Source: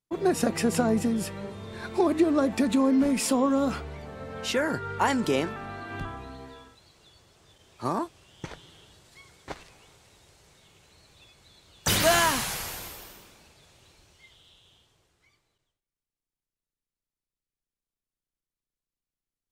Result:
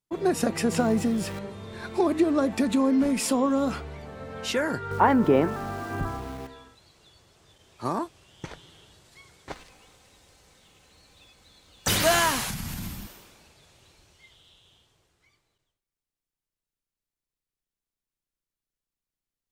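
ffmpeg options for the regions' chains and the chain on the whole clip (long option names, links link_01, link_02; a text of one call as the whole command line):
ffmpeg -i in.wav -filter_complex "[0:a]asettb=1/sr,asplit=3[link_01][link_02][link_03];[link_01]atrim=end=0.714[link_04];[link_02]atrim=start=0.71:end=1.39,asetpts=PTS-STARTPTS,afade=type=in:duration=0.004:curve=qsin,afade=type=out:start_time=0.676:duration=0.004:curve=qsin,aeval=exprs='val(0)+0.5*0.015*sgn(val(0))':channel_layout=same,acrossover=split=7700[link_05][link_06];[link_06]acompressor=threshold=-42dB:ratio=4:attack=1:release=60[link_07];[link_05][link_07]amix=inputs=2:normalize=0[link_08];[link_03]atrim=start=1.386[link_09];[link_04][link_08]acrossfade=duration=0.004:curve1=hsin:curve2=qsin[link_10];[link_10][link_09]acrossfade=duration=0.004:curve1=qsin:curve2=hsin,asettb=1/sr,asplit=3[link_11][link_12][link_13];[link_11]atrim=end=4.914[link_14];[link_12]atrim=start=4.91:end=6.47,asetpts=PTS-STARTPTS,afade=type=in:duration=0.004:curve=qsin,afade=type=out:start_time=1.556:duration=0.004:curve=qsin,lowpass=1400,aeval=exprs='val(0)*gte(abs(val(0)),0.00447)':channel_layout=same,acontrast=54[link_15];[link_13]atrim=start=6.466[link_16];[link_14][link_15]acrossfade=duration=0.004:curve1=hsin:curve2=qsin[link_17];[link_17][link_16]acrossfade=duration=0.004:curve1=qsin:curve2=hsin,asettb=1/sr,asplit=3[link_18][link_19][link_20];[link_18]atrim=end=9.534[link_21];[link_19]atrim=start=9.53:end=11.89,asetpts=PTS-STARTPTS,afade=type=in:duration=0.004:curve=qsin,afade=type=out:start_time=2.356:duration=0.004:curve=qsin,acrusher=bits=6:mode=log:mix=0:aa=0.000001,aecho=1:1:3.9:0.37,atrim=end_sample=104076[link_22];[link_20]atrim=start=11.886[link_23];[link_21][link_22]acrossfade=duration=0.004:curve1=hsin:curve2=qsin[link_24];[link_24][link_23]acrossfade=duration=0.004:curve1=qsin:curve2=hsin,asettb=1/sr,asplit=3[link_25][link_26][link_27];[link_25]atrim=end=12.504[link_28];[link_26]atrim=start=12.5:end=13.07,asetpts=PTS-STARTPTS,afade=type=in:duration=0.004:curve=qsin,afade=type=out:start_time=0.566:duration=0.004:curve=qsin,lowshelf=frequency=310:width_type=q:width=3:gain=12.5,acompressor=threshold=-29dB:ratio=6:attack=3.2:release=140:knee=1:detection=peak[link_29];[link_27]atrim=start=13.066[link_30];[link_28][link_29]acrossfade=duration=0.004:curve1=hsin:curve2=qsin[link_31];[link_31][link_30]acrossfade=duration=0.004:curve1=qsin:curve2=hsin" out.wav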